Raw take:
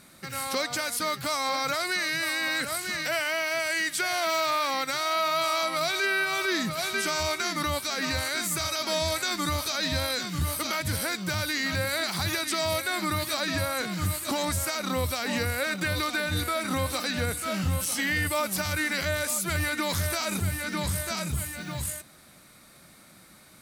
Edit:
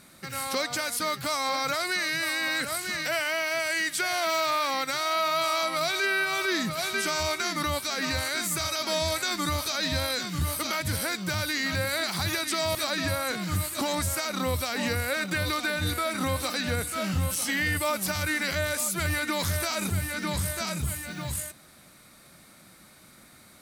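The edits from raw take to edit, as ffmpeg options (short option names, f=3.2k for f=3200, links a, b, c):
-filter_complex "[0:a]asplit=2[a][b];[a]atrim=end=12.752[c];[b]atrim=start=13.248[d];[c][d]acrossfade=d=0.004:c1=hsin:c2=hsin"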